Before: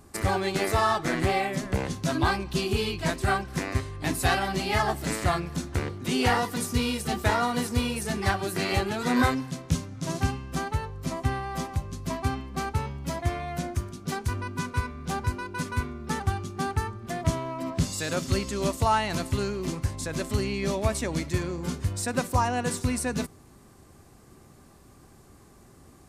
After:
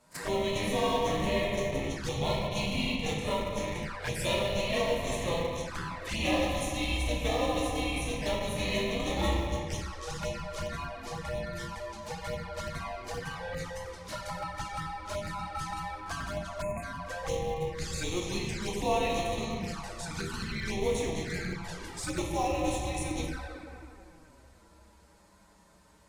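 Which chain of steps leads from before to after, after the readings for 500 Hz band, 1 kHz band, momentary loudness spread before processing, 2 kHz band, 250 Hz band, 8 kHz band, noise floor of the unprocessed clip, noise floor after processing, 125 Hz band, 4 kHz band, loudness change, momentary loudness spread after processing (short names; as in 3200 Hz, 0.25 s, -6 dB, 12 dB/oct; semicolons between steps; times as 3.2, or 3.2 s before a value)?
-1.0 dB, -6.0 dB, 7 LU, -5.5 dB, -5.5 dB, -5.0 dB, -53 dBFS, -59 dBFS, -8.0 dB, -1.5 dB, -4.5 dB, 9 LU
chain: weighting filter A; shoebox room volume 130 m³, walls hard, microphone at 0.59 m; in parallel at -9.5 dB: Schmitt trigger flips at -21.5 dBFS; on the sum: envelope flanger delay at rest 9.6 ms, full sweep at -24 dBFS; frequency shift -180 Hz; on a send: reverse echo 33 ms -18 dB; on the sum: spectral delete 16.62–16.83, 2700–6500 Hz; gain -3.5 dB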